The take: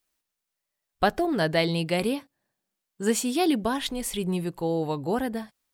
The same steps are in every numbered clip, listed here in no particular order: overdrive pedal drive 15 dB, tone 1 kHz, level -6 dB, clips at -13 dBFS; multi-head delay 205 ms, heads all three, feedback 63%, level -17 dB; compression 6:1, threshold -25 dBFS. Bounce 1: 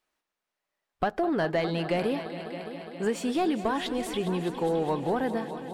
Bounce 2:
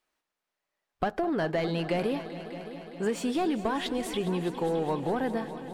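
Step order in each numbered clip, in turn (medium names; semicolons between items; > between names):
compression > multi-head delay > overdrive pedal; overdrive pedal > compression > multi-head delay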